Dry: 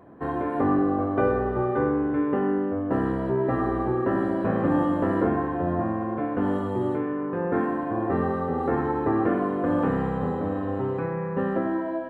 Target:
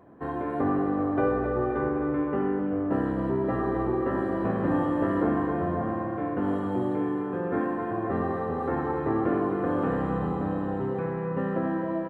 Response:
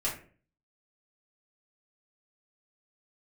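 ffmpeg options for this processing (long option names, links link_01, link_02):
-af "aecho=1:1:261|522|783|1044|1305|1566|1827|2088:0.447|0.264|0.155|0.0917|0.0541|0.0319|0.0188|0.0111,volume=-3.5dB"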